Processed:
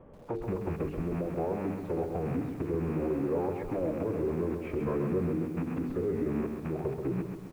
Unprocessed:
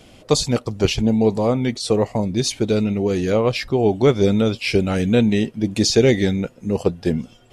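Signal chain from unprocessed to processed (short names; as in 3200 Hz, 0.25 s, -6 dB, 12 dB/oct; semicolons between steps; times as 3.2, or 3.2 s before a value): rattling part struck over -29 dBFS, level -13 dBFS; formant-preserving pitch shift -4.5 st; LPF 1300 Hz 24 dB/oct; bell 71 Hz -9 dB 0.28 oct; compressor 6:1, threshold -22 dBFS, peak gain reduction 12.5 dB; notches 50/100/150/200/250/300/350/400/450 Hz; feedback echo 0.837 s, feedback 34%, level -22 dB; limiter -22.5 dBFS, peak gain reduction 10 dB; dynamic EQ 470 Hz, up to +5 dB, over -47 dBFS, Q 4.4; lo-fi delay 0.133 s, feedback 55%, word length 9-bit, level -6 dB; gain -2.5 dB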